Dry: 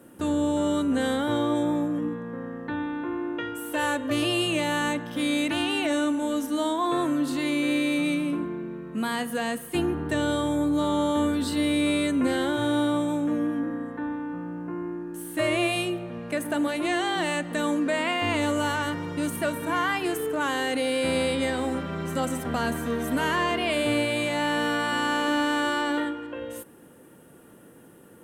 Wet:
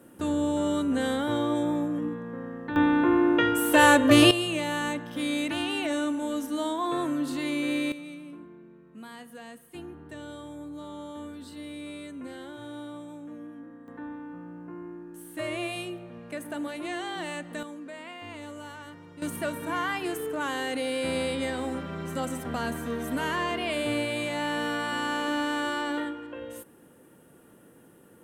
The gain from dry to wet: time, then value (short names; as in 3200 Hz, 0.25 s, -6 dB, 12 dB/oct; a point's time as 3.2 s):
-2 dB
from 2.76 s +9 dB
from 4.31 s -3.5 dB
from 7.92 s -16 dB
from 13.88 s -8 dB
from 17.63 s -16 dB
from 19.22 s -4 dB